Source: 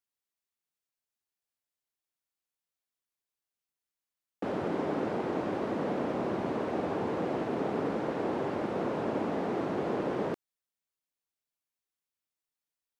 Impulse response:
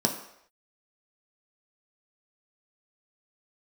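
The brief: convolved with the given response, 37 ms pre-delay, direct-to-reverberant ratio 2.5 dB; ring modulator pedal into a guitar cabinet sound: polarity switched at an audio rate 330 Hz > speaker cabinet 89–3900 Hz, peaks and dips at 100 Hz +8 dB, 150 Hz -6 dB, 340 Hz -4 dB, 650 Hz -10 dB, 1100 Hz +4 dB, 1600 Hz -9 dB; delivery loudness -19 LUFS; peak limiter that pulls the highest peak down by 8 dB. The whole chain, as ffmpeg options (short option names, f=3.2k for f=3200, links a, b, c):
-filter_complex "[0:a]alimiter=level_in=3dB:limit=-24dB:level=0:latency=1,volume=-3dB,asplit=2[a][b];[1:a]atrim=start_sample=2205,adelay=37[c];[b][c]afir=irnorm=-1:irlink=0,volume=-12.5dB[d];[a][d]amix=inputs=2:normalize=0,aeval=exprs='val(0)*sgn(sin(2*PI*330*n/s))':c=same,highpass=89,equalizer=f=100:t=q:w=4:g=8,equalizer=f=150:t=q:w=4:g=-6,equalizer=f=340:t=q:w=4:g=-4,equalizer=f=650:t=q:w=4:g=-10,equalizer=f=1.1k:t=q:w=4:g=4,equalizer=f=1.6k:t=q:w=4:g=-9,lowpass=f=3.9k:w=0.5412,lowpass=f=3.9k:w=1.3066,volume=14dB"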